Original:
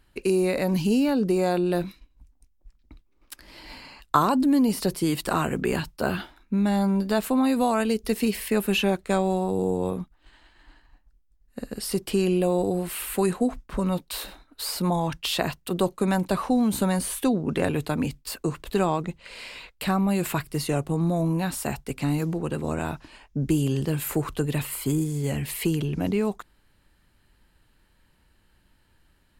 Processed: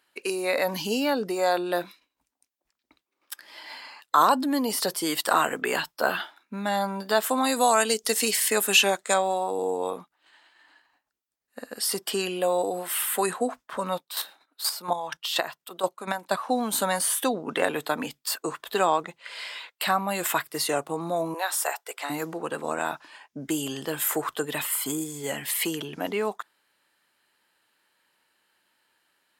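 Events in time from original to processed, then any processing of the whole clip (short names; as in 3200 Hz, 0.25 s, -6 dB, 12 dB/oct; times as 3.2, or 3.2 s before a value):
7.29–9.14 bell 7300 Hz +10 dB 1.1 oct
13.93–16.49 chopper 4.2 Hz, depth 60%, duty 20%
21.34–22.1 inverse Chebyshev high-pass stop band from 200 Hz
whole clip: Bessel high-pass 650 Hz, order 2; spectral noise reduction 6 dB; maximiser +11.5 dB; gain -5.5 dB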